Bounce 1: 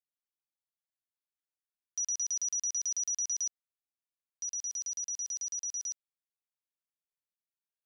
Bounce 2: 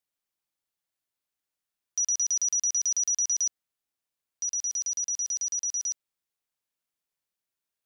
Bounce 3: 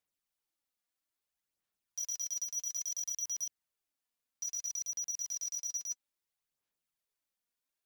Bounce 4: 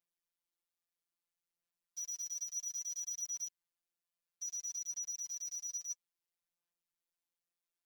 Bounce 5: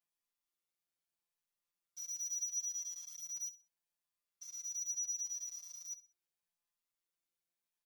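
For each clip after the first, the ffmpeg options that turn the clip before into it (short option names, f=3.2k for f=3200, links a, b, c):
-af "acontrast=67"
-af "asoftclip=type=tanh:threshold=-33dB,aphaser=in_gain=1:out_gain=1:delay=4.2:decay=0.47:speed=0.6:type=sinusoidal,volume=-3.5dB"
-af "afftfilt=real='hypot(re,im)*cos(PI*b)':imag='0':win_size=1024:overlap=0.75,volume=-2dB"
-filter_complex "[0:a]aecho=1:1:63|126|189:0.158|0.0444|0.0124,asplit=2[a][b];[b]adelay=10,afreqshift=-0.77[c];[a][c]amix=inputs=2:normalize=1,volume=2dB"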